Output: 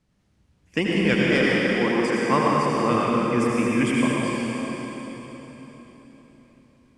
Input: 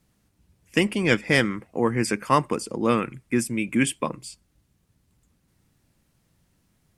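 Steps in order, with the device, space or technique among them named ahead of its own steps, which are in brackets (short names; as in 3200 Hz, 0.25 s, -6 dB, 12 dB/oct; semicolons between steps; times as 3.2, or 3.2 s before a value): air absorption 70 m; 1.14–2.18 elliptic high-pass 180 Hz; cathedral (reverb RT60 4.2 s, pre-delay 71 ms, DRR -5 dB); gain -3 dB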